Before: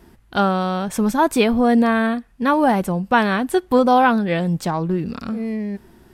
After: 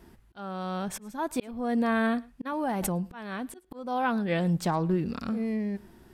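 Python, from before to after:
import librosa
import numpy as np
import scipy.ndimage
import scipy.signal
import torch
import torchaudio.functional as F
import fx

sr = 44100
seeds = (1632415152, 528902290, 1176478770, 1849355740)

y = fx.auto_swell(x, sr, attack_ms=754.0)
y = y + 10.0 ** (-24.0 / 20.0) * np.pad(y, (int(109 * sr / 1000.0), 0))[:len(y)]
y = fx.pre_swell(y, sr, db_per_s=22.0, at=(2.45, 3.05), fade=0.02)
y = F.gain(torch.from_numpy(y), -5.0).numpy()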